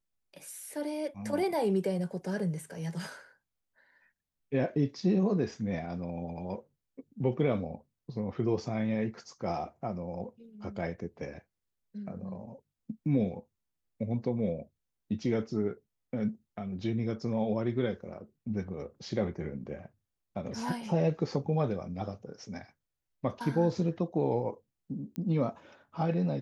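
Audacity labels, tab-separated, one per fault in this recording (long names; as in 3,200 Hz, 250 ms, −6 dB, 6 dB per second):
25.160000	25.160000	click −24 dBFS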